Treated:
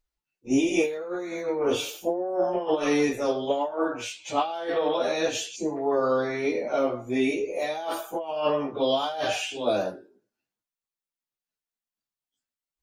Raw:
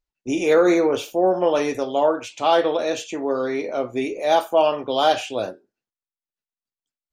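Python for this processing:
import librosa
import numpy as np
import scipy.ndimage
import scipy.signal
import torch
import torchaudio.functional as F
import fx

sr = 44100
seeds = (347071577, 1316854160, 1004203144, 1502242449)

y = fx.over_compress(x, sr, threshold_db=-21.0, ratio=-0.5)
y = fx.stretch_vocoder_free(y, sr, factor=1.8)
y = fx.spec_box(y, sr, start_s=5.56, length_s=0.2, low_hz=1100.0, high_hz=3900.0, gain_db=-19)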